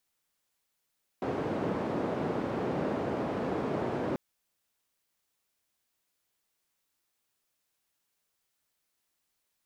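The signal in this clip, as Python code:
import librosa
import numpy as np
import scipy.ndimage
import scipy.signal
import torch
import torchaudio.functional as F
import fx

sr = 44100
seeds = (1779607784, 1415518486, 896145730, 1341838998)

y = fx.band_noise(sr, seeds[0], length_s=2.94, low_hz=150.0, high_hz=510.0, level_db=-32.0)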